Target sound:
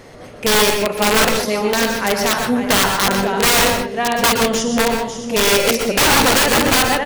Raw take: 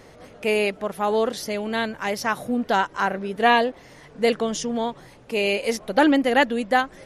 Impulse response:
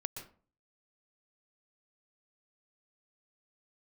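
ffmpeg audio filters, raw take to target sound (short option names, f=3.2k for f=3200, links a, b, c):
-filter_complex "[0:a]aecho=1:1:52|150|542|622:0.355|0.224|0.316|0.211,aeval=exprs='(mod(5.96*val(0)+1,2)-1)/5.96':c=same[a];[1:a]atrim=start_sample=2205,afade=t=out:st=0.21:d=0.01,atrim=end_sample=9702[b];[a][b]afir=irnorm=-1:irlink=0,volume=8.5dB"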